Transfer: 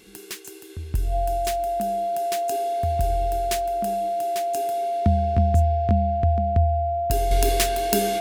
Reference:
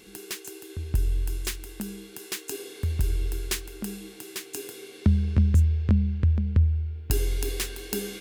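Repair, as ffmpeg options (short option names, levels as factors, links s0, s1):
-af "bandreject=f=690:w=30,asetnsamples=n=441:p=0,asendcmd='7.31 volume volume -7.5dB',volume=1"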